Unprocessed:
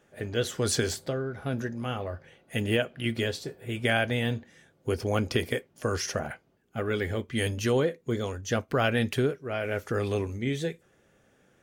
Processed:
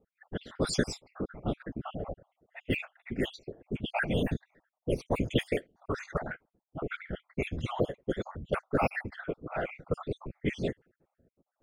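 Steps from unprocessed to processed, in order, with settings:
time-frequency cells dropped at random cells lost 60%
random phases in short frames
low-pass that shuts in the quiet parts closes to 470 Hz, open at −24.5 dBFS

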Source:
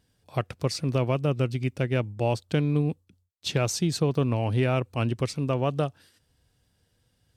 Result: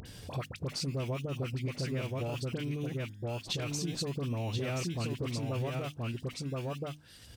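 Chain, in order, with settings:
in parallel at −12 dB: sample-and-hold swept by an LFO 20×, swing 60% 0.62 Hz
on the sum: all-pass dispersion highs, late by 57 ms, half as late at 1,500 Hz
on a send: single-tap delay 1,028 ms −4.5 dB
on the sum: brickwall limiter −16.5 dBFS, peak gain reduction 7.5 dB
drawn EQ curve 230 Hz 0 dB, 830 Hz −3 dB, 3,100 Hz +4 dB
upward compression, threshold −30 dBFS
high-shelf EQ 6,900 Hz −4 dB
downward compressor 2 to 1, threshold −38 dBFS, peak gain reduction 9.5 dB
mains-hum notches 50/100/150/200/250/300 Hz

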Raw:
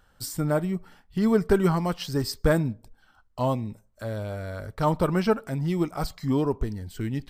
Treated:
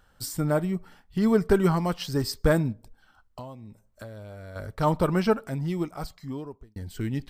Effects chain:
0:02.72–0:04.56: downward compressor 10 to 1, threshold −38 dBFS, peak gain reduction 17.5 dB
0:05.32–0:06.76: fade out

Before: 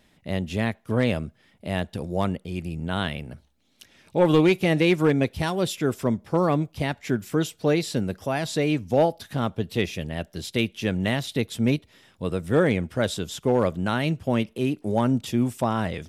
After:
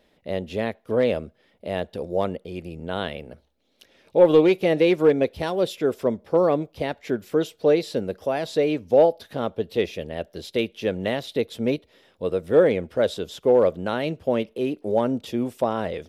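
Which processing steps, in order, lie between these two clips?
octave-band graphic EQ 125/500/4,000/8,000 Hz −6/+11/+3/−6 dB
level −4 dB

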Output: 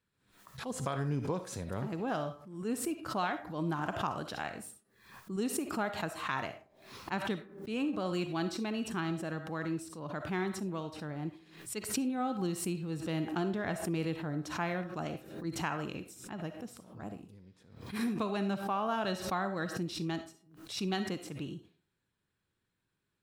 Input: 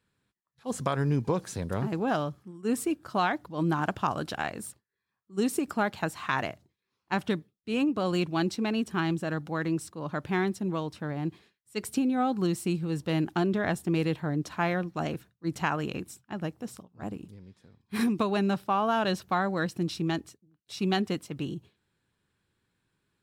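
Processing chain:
on a send at −8 dB: parametric band 110 Hz −11.5 dB 2.5 octaves + convolution reverb RT60 0.40 s, pre-delay 20 ms
on the sum: background raised ahead of every attack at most 85 dB per second
level −7 dB

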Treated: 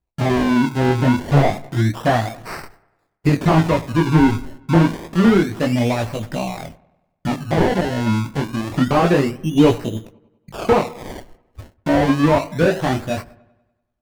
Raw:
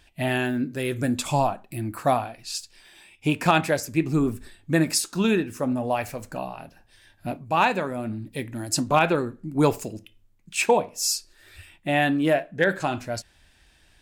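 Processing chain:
noise gate −46 dBFS, range −36 dB
de-essing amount 65%
low-shelf EQ 430 Hz +8.5 dB
in parallel at −0.5 dB: downward compressor, threshold −39 dBFS, peak gain reduction 26 dB
on the sum: chorus effect 0.51 Hz, delay 17 ms, depth 6.6 ms
sample-and-hold swept by an LFO 25×, swing 100% 0.28 Hz
on a send: delay with a low-pass on its return 97 ms, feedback 53%, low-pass 1,800 Hz, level −21 dB
on the sum: slew-rate limiting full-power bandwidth 150 Hz
level +5.5 dB

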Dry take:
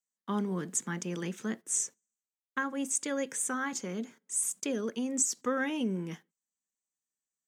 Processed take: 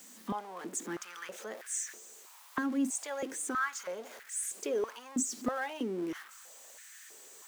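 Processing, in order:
converter with a step at zero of −38 dBFS
high-pass on a step sequencer 3.1 Hz 240–1,700 Hz
level −7 dB

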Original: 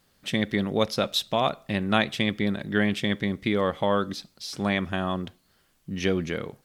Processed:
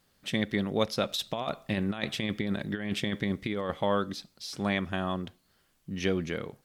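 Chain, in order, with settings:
0:01.09–0:03.74: compressor whose output falls as the input rises −26 dBFS, ratio −0.5
level −3.5 dB

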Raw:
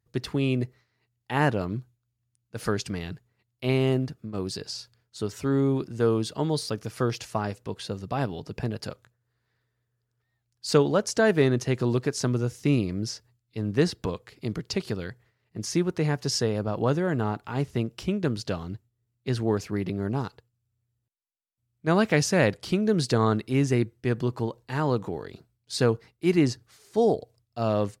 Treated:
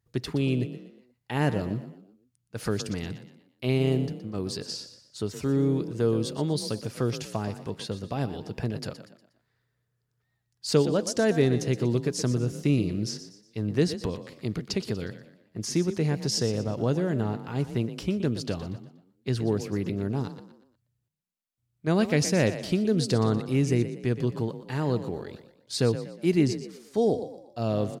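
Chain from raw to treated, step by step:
dynamic equaliser 1,200 Hz, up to −8 dB, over −40 dBFS, Q 0.78
echo with shifted repeats 120 ms, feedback 39%, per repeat +31 Hz, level −12 dB

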